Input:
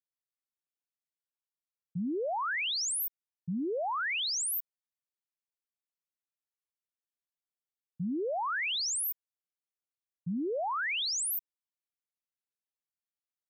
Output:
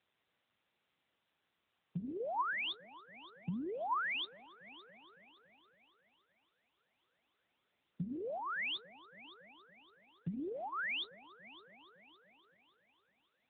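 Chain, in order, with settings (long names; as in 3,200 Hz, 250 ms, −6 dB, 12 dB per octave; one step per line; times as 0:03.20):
brickwall limiter −36 dBFS, peak gain reduction 7 dB
high-pass filter 120 Hz 24 dB per octave
echo machine with several playback heads 281 ms, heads first and second, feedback 50%, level −24 dB
downward compressor 12 to 1, threshold −42 dBFS, peak gain reduction 5 dB
0:02.19–0:04.45: parametric band 1,000 Hz +9 dB 0.25 octaves
level +7 dB
AMR narrowband 10.2 kbit/s 8,000 Hz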